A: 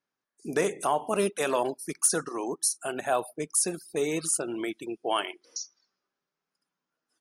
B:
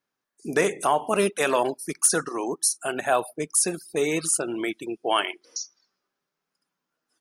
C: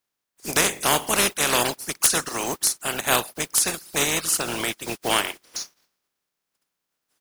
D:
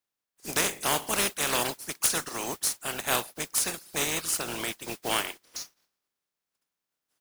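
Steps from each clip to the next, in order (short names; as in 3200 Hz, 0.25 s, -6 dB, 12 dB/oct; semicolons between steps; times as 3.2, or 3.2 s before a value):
dynamic EQ 2000 Hz, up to +4 dB, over -40 dBFS, Q 1; gain +3.5 dB
spectral contrast lowered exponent 0.33; gain +1.5 dB
modulation noise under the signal 10 dB; gain -6.5 dB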